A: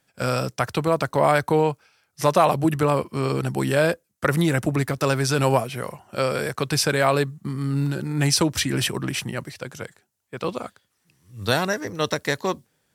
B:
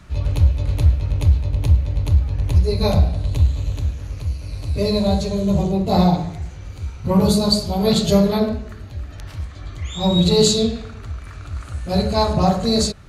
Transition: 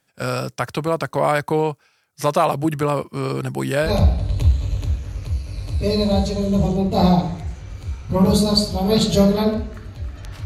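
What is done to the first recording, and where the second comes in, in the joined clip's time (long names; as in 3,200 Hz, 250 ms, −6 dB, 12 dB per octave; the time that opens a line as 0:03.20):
A
0:03.88: continue with B from 0:02.83, crossfade 0.14 s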